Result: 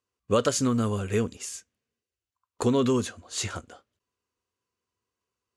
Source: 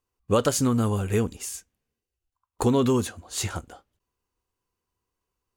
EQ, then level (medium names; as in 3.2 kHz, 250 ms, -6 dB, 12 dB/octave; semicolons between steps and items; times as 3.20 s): cabinet simulation 110–9800 Hz, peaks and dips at 160 Hz -7 dB, 320 Hz -4 dB, 830 Hz -8 dB, 9 kHz -5 dB; 0.0 dB